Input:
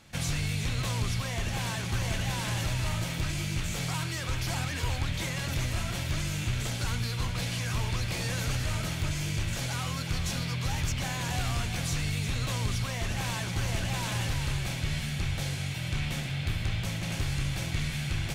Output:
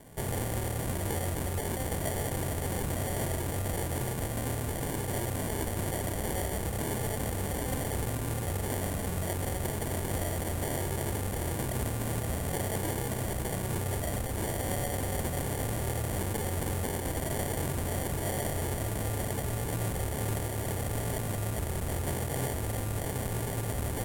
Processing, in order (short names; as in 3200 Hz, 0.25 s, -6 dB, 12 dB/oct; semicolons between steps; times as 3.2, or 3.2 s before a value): HPF 160 Hz 6 dB/oct; limiter -29 dBFS, peak gain reduction 8.5 dB; sample-and-hold 26×; wide varispeed 0.763×; resonant high shelf 6900 Hz +9 dB, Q 1.5; gain +5.5 dB